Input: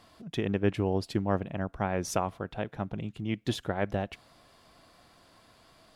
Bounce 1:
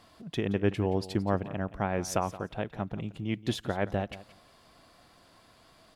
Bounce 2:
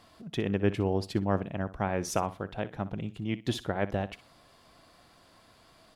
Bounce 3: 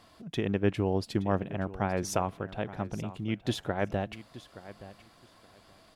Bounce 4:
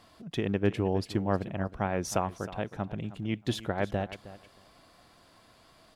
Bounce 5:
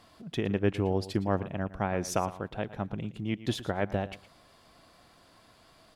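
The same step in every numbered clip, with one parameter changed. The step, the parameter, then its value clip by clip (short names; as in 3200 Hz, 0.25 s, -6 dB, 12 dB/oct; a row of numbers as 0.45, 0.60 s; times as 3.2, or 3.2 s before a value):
feedback echo, time: 174, 61, 873, 314, 114 ms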